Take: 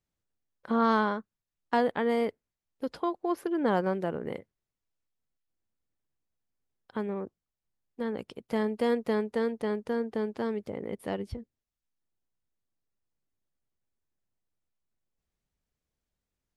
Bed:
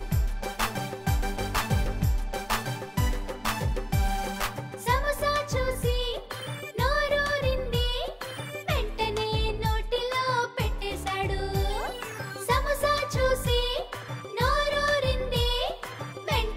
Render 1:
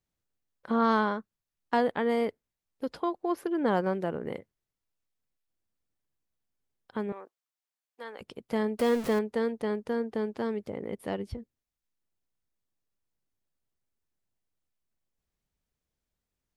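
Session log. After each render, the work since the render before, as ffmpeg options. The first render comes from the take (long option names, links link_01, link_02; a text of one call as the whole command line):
ffmpeg -i in.wav -filter_complex "[0:a]asettb=1/sr,asplit=3[link_01][link_02][link_03];[link_01]atrim=end=7.124[link_04];[link_02]atrim=start=7.12:end=8.21,asetpts=PTS-STARTPTS,afade=type=in:duration=0.004:curve=qsin,afade=type=out:start_time=1.086:duration=0.004:curve=qsin,highpass=770[link_05];[link_03]atrim=start=8.206[link_06];[link_04][link_05]acrossfade=duration=0.004:curve1=hsin:curve2=qsin[link_07];[link_07][link_06]acrossfade=duration=0.004:curve1=qsin:curve2=hsin,asettb=1/sr,asplit=3[link_08][link_09][link_10];[link_08]atrim=end=8.794[link_11];[link_09]atrim=start=8.79:end=9.19,asetpts=PTS-STARTPTS,afade=type=in:duration=0.004:curve=qsin,afade=type=out:start_time=0.396:duration=0.004:curve=qsin,aeval=exprs='val(0)+0.5*0.0224*sgn(val(0))':channel_layout=same[link_12];[link_10]atrim=start=9.186[link_13];[link_11][link_12]acrossfade=duration=0.004:curve1=hsin:curve2=qsin[link_14];[link_14][link_13]acrossfade=duration=0.004:curve1=qsin:curve2=hsin" out.wav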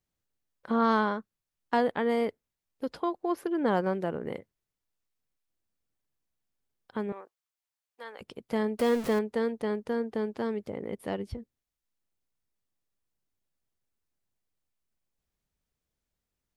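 ffmpeg -i in.wav -filter_complex "[0:a]asettb=1/sr,asplit=3[link_01][link_02][link_03];[link_01]atrim=end=7.214[link_04];[link_02]atrim=start=7.21:end=8.21,asetpts=PTS-STARTPTS,afade=type=in:duration=0.004:curve=qsin,afade=type=out:start_time=0.996:duration=0.004:curve=qsin,equalizer=frequency=250:width_type=o:width=1.6:gain=-6[link_05];[link_03]atrim=start=8.206[link_06];[link_04][link_05]acrossfade=duration=0.004:curve1=hsin:curve2=qsin[link_07];[link_07][link_06]acrossfade=duration=0.004:curve1=qsin:curve2=hsin" out.wav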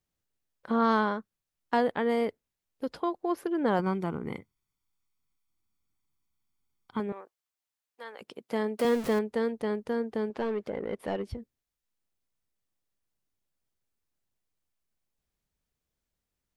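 ffmpeg -i in.wav -filter_complex "[0:a]asettb=1/sr,asplit=3[link_01][link_02][link_03];[link_01]atrim=end=3.794[link_04];[link_02]atrim=start=3.79:end=7,asetpts=PTS-STARTPTS,afade=type=in:duration=0.004:curve=qsin,afade=type=out:start_time=3.206:duration=0.004:curve=qsin,aecho=1:1:0.9:0.68,atrim=end_sample=141561[link_05];[link_03]atrim=start=6.996[link_06];[link_04][link_05]acrossfade=duration=0.004:curve1=hsin:curve2=qsin[link_07];[link_07][link_06]acrossfade=duration=0.004:curve1=qsin:curve2=hsin,asettb=1/sr,asplit=3[link_08][link_09][link_10];[link_08]atrim=end=8.154[link_11];[link_09]atrim=start=8.15:end=8.85,asetpts=PTS-STARTPTS,afade=type=in:duration=0.004:curve=qsin,afade=type=out:start_time=0.696:duration=0.004:curve=qsin,highpass=210[link_12];[link_10]atrim=start=8.846[link_13];[link_11][link_12]acrossfade=duration=0.004:curve1=hsin:curve2=qsin[link_14];[link_14][link_13]acrossfade=duration=0.004:curve1=qsin:curve2=hsin,asettb=1/sr,asplit=3[link_15][link_16][link_17];[link_15]atrim=end=10.304[link_18];[link_16]atrim=start=10.3:end=11.28,asetpts=PTS-STARTPTS,afade=type=in:duration=0.004:curve=qsin,afade=type=out:start_time=0.976:duration=0.004:curve=qsin,asplit=2[link_19][link_20];[link_20]highpass=frequency=720:poles=1,volume=15dB,asoftclip=type=tanh:threshold=-22dB[link_21];[link_19][link_21]amix=inputs=2:normalize=0,lowpass=frequency=1900:poles=1,volume=-6dB[link_22];[link_17]atrim=start=11.276[link_23];[link_18][link_22]acrossfade=duration=0.004:curve1=hsin:curve2=qsin[link_24];[link_24][link_23]acrossfade=duration=0.004:curve1=qsin:curve2=hsin" out.wav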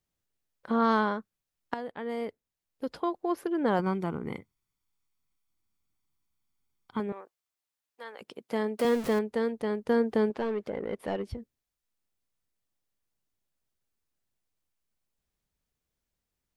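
ffmpeg -i in.wav -filter_complex "[0:a]asettb=1/sr,asplit=3[link_01][link_02][link_03];[link_01]atrim=end=9.894[link_04];[link_02]atrim=start=9.89:end=10.32,asetpts=PTS-STARTPTS,afade=type=in:duration=0.004:curve=qsin,afade=type=out:start_time=0.426:duration=0.004:curve=qsin,acontrast=38[link_05];[link_03]atrim=start=10.316[link_06];[link_04][link_05]acrossfade=duration=0.004:curve1=hsin:curve2=qsin[link_07];[link_07][link_06]acrossfade=duration=0.004:curve1=qsin:curve2=hsin,asplit=2[link_08][link_09];[link_08]atrim=end=1.74,asetpts=PTS-STARTPTS,afade=type=out:start_time=1.736:duration=0.004:curve=hsin:silence=0.199526[link_10];[link_09]atrim=start=1.74,asetpts=PTS-STARTPTS,afade=type=in:duration=1.24:silence=0.199526[link_11];[link_10][link_11]concat=n=2:v=0:a=1" out.wav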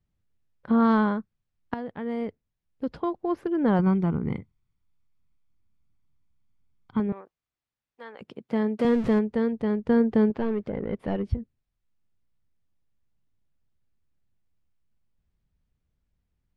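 ffmpeg -i in.wav -af "lowpass=7900,bass=frequency=250:gain=13,treble=frequency=4000:gain=-9" out.wav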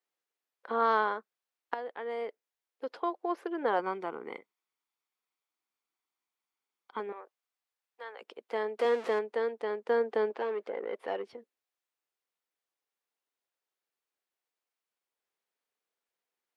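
ffmpeg -i in.wav -af "highpass=frequency=440:width=0.5412,highpass=frequency=440:width=1.3066,bandreject=frequency=600:width=12" out.wav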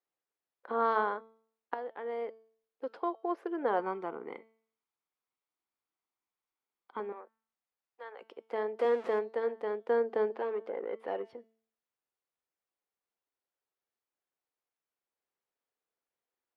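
ffmpeg -i in.wav -af "highshelf=frequency=2200:gain=-10.5,bandreject=frequency=223.2:width_type=h:width=4,bandreject=frequency=446.4:width_type=h:width=4,bandreject=frequency=669.6:width_type=h:width=4,bandreject=frequency=892.8:width_type=h:width=4,bandreject=frequency=1116:width_type=h:width=4,bandreject=frequency=1339.2:width_type=h:width=4,bandreject=frequency=1562.4:width_type=h:width=4,bandreject=frequency=1785.6:width_type=h:width=4,bandreject=frequency=2008.8:width_type=h:width=4,bandreject=frequency=2232:width_type=h:width=4,bandreject=frequency=2455.2:width_type=h:width=4,bandreject=frequency=2678.4:width_type=h:width=4,bandreject=frequency=2901.6:width_type=h:width=4,bandreject=frequency=3124.8:width_type=h:width=4,bandreject=frequency=3348:width_type=h:width=4,bandreject=frequency=3571.2:width_type=h:width=4,bandreject=frequency=3794.4:width_type=h:width=4,bandreject=frequency=4017.6:width_type=h:width=4,bandreject=frequency=4240.8:width_type=h:width=4,bandreject=frequency=4464:width_type=h:width=4,bandreject=frequency=4687.2:width_type=h:width=4,bandreject=frequency=4910.4:width_type=h:width=4,bandreject=frequency=5133.6:width_type=h:width=4,bandreject=frequency=5356.8:width_type=h:width=4,bandreject=frequency=5580:width_type=h:width=4,bandreject=frequency=5803.2:width_type=h:width=4,bandreject=frequency=6026.4:width_type=h:width=4,bandreject=frequency=6249.6:width_type=h:width=4,bandreject=frequency=6472.8:width_type=h:width=4" out.wav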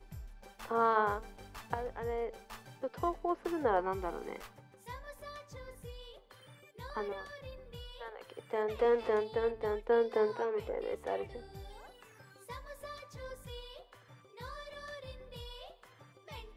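ffmpeg -i in.wav -i bed.wav -filter_complex "[1:a]volume=-21.5dB[link_01];[0:a][link_01]amix=inputs=2:normalize=0" out.wav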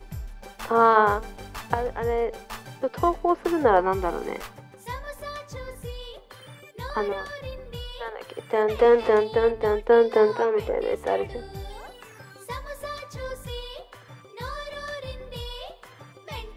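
ffmpeg -i in.wav -af "volume=11.5dB" out.wav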